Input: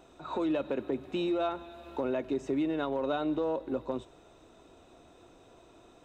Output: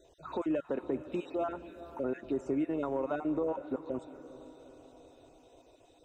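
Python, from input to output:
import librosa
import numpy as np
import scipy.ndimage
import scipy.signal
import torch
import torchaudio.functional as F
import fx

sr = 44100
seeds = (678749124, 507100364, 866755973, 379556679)

y = fx.spec_dropout(x, sr, seeds[0], share_pct=26)
y = fx.env_phaser(y, sr, low_hz=190.0, high_hz=4100.0, full_db=-31.0)
y = fx.echo_diffused(y, sr, ms=454, feedback_pct=54, wet_db=-15.0)
y = y * 10.0 ** (-1.0 / 20.0)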